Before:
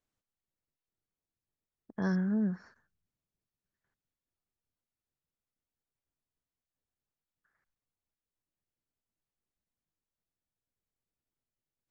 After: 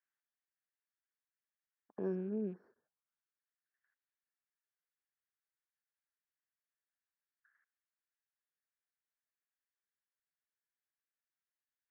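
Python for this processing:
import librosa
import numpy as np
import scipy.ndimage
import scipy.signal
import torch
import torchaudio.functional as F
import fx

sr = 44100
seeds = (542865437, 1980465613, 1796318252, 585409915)

y = fx.rattle_buzz(x, sr, strikes_db=-40.0, level_db=-41.0)
y = fx.auto_wah(y, sr, base_hz=390.0, top_hz=1700.0, q=3.9, full_db=-42.5, direction='down')
y = y * librosa.db_to_amplitude(4.5)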